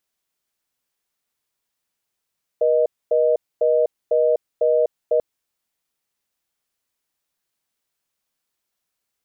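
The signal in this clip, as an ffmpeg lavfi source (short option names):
-f lavfi -i "aevalsrc='0.141*(sin(2*PI*480*t)+sin(2*PI*620*t))*clip(min(mod(t,0.5),0.25-mod(t,0.5))/0.005,0,1)':d=2.59:s=44100"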